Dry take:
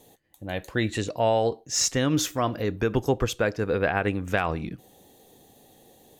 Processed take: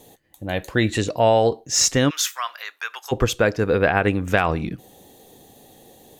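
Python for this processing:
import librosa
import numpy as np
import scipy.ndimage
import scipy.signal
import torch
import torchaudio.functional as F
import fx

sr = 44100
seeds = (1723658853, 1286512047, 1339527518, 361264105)

y = fx.highpass(x, sr, hz=1100.0, slope=24, at=(2.09, 3.11), fade=0.02)
y = F.gain(torch.from_numpy(y), 6.0).numpy()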